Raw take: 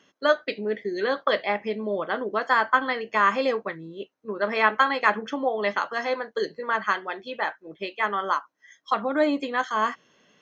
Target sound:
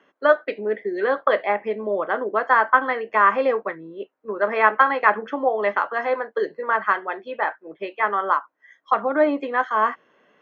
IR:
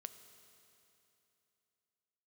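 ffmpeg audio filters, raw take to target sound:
-filter_complex "[0:a]acrossover=split=290 2300:gain=0.251 1 0.0794[a][b][c];[a][b][c]amix=inputs=3:normalize=0,volume=5dB"

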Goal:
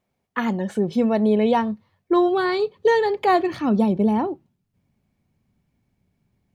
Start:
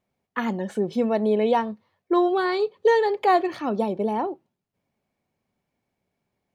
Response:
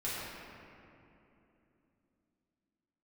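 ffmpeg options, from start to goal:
-af "asubboost=boost=5:cutoff=230,volume=2.5dB"

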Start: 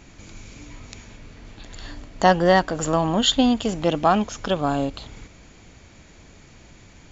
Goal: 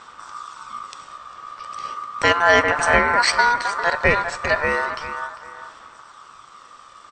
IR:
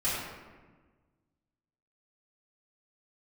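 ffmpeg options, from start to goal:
-filter_complex "[0:a]asplit=2[a][b];[b]adelay=399,lowpass=f=1.3k:p=1,volume=-8.5dB,asplit=2[c][d];[d]adelay=399,lowpass=f=1.3k:p=1,volume=0.22,asplit=2[e][f];[f]adelay=399,lowpass=f=1.3k:p=1,volume=0.22[g];[a][c][e][g]amix=inputs=4:normalize=0,aphaser=in_gain=1:out_gain=1:delay=1.8:decay=0.36:speed=0.35:type=sinusoidal,asplit=2[h][i];[1:a]atrim=start_sample=2205,asetrate=48510,aresample=44100[j];[i][j]afir=irnorm=-1:irlink=0,volume=-23dB[k];[h][k]amix=inputs=2:normalize=0,aeval=exprs='val(0)*sin(2*PI*1200*n/s)':c=same,volume=2.5dB"

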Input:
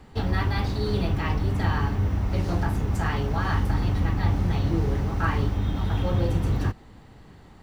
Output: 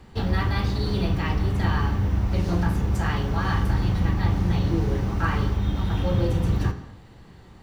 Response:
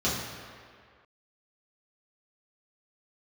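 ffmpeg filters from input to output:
-filter_complex "[0:a]asplit=2[a][b];[1:a]atrim=start_sample=2205,afade=t=out:st=0.31:d=0.01,atrim=end_sample=14112,lowshelf=f=500:g=-7[c];[b][c]afir=irnorm=-1:irlink=0,volume=-17dB[d];[a][d]amix=inputs=2:normalize=0"

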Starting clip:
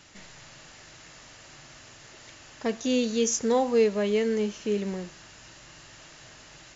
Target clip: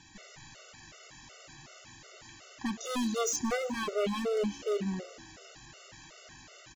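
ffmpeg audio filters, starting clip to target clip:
-filter_complex "[0:a]aeval=exprs='0.075*(abs(mod(val(0)/0.075+3,4)-2)-1)':c=same,asplit=6[a][b][c][d][e][f];[b]adelay=180,afreqshift=66,volume=-21dB[g];[c]adelay=360,afreqshift=132,volume=-25.3dB[h];[d]adelay=540,afreqshift=198,volume=-29.6dB[i];[e]adelay=720,afreqshift=264,volume=-33.9dB[j];[f]adelay=900,afreqshift=330,volume=-38.2dB[k];[a][g][h][i][j][k]amix=inputs=6:normalize=0,afftfilt=real='re*gt(sin(2*PI*2.7*pts/sr)*(1-2*mod(floor(b*sr/1024/380),2)),0)':imag='im*gt(sin(2*PI*2.7*pts/sr)*(1-2*mod(floor(b*sr/1024/380),2)),0)':win_size=1024:overlap=0.75"

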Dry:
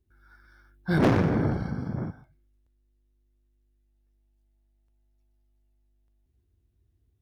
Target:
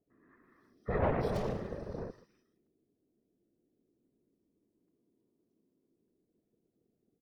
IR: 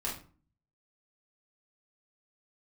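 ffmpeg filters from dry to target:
-filter_complex "[0:a]acrossover=split=2600[a][b];[b]adelay=320[c];[a][c]amix=inputs=2:normalize=0,aeval=exprs='val(0)*sin(2*PI*300*n/s)':c=same,afftfilt=real='hypot(re,im)*cos(2*PI*random(0))':imag='hypot(re,im)*sin(2*PI*random(1))':win_size=512:overlap=0.75"

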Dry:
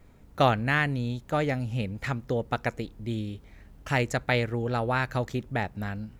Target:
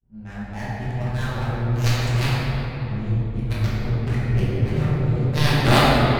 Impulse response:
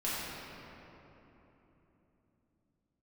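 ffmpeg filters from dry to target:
-filter_complex "[0:a]areverse,aemphasis=mode=production:type=50kf,agate=range=-33dB:threshold=-40dB:ratio=3:detection=peak,asubboost=boost=10:cutoff=140,adynamicsmooth=sensitivity=6.5:basefreq=780,aeval=exprs='0.473*(cos(1*acos(clip(val(0)/0.473,-1,1)))-cos(1*PI/2))+0.237*(cos(3*acos(clip(val(0)/0.473,-1,1)))-cos(3*PI/2))':c=same[a];[1:a]atrim=start_sample=2205,asetrate=39690,aresample=44100[b];[a][b]afir=irnorm=-1:irlink=0"

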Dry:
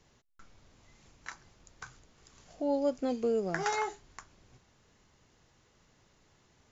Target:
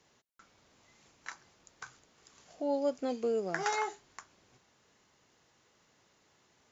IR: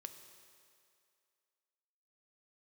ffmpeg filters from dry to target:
-af "highpass=f=300:p=1"

